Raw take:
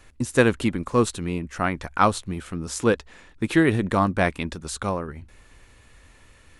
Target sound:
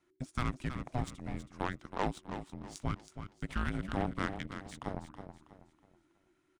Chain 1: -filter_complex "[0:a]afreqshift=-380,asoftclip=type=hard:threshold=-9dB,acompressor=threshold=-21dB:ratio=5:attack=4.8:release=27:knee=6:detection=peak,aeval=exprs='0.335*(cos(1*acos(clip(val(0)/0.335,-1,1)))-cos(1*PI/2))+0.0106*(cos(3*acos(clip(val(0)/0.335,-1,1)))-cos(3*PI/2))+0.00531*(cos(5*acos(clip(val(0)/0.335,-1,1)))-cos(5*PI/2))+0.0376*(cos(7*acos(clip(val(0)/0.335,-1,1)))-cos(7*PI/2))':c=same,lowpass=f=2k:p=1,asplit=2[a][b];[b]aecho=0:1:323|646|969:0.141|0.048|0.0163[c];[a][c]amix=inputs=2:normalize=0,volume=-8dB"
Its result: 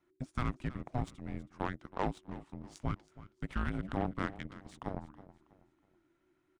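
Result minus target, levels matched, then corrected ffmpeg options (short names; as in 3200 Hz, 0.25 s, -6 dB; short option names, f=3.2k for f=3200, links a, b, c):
8000 Hz band -7.0 dB; echo-to-direct -7.5 dB
-filter_complex "[0:a]afreqshift=-380,asoftclip=type=hard:threshold=-9dB,acompressor=threshold=-21dB:ratio=5:attack=4.8:release=27:knee=6:detection=peak,aeval=exprs='0.335*(cos(1*acos(clip(val(0)/0.335,-1,1)))-cos(1*PI/2))+0.0106*(cos(3*acos(clip(val(0)/0.335,-1,1)))-cos(3*PI/2))+0.00531*(cos(5*acos(clip(val(0)/0.335,-1,1)))-cos(5*PI/2))+0.0376*(cos(7*acos(clip(val(0)/0.335,-1,1)))-cos(7*PI/2))':c=same,lowpass=f=5.8k:p=1,asplit=2[a][b];[b]aecho=0:1:323|646|969|1292:0.335|0.114|0.0387|0.0132[c];[a][c]amix=inputs=2:normalize=0,volume=-8dB"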